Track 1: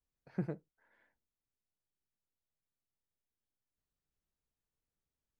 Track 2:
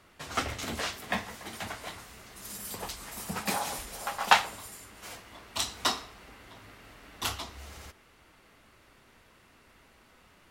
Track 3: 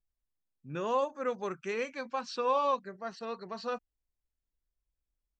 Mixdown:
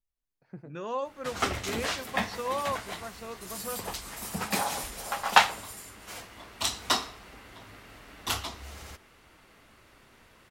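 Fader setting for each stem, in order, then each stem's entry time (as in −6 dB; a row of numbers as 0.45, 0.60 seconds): −8.0, +2.0, −3.0 decibels; 0.15, 1.05, 0.00 seconds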